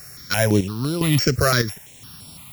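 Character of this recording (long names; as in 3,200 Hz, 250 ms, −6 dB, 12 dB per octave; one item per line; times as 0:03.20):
a buzz of ramps at a fixed pitch in blocks of 8 samples
chopped level 0.99 Hz, depth 65%, duty 60%
a quantiser's noise floor 8 bits, dither triangular
notches that jump at a steady rate 5.9 Hz 910–6,400 Hz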